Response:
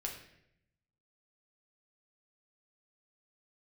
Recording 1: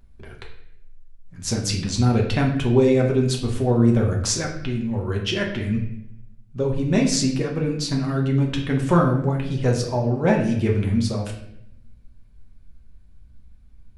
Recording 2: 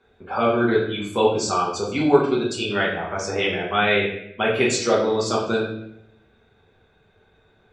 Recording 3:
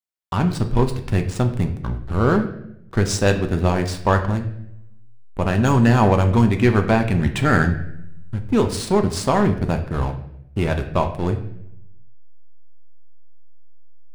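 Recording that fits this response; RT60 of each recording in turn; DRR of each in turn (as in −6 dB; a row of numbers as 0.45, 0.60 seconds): 1; 0.75, 0.75, 0.75 seconds; −0.5, −6.0, 5.5 decibels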